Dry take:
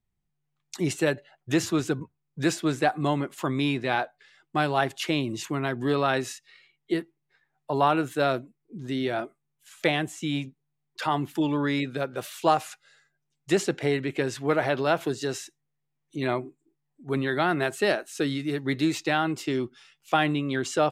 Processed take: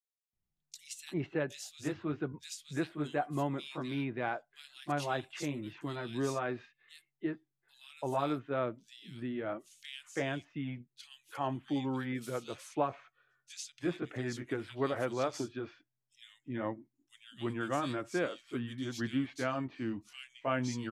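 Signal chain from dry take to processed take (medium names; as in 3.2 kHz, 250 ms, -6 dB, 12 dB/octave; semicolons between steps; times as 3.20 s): pitch bend over the whole clip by -3 st starting unshifted; bands offset in time highs, lows 330 ms, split 2.8 kHz; trim -8 dB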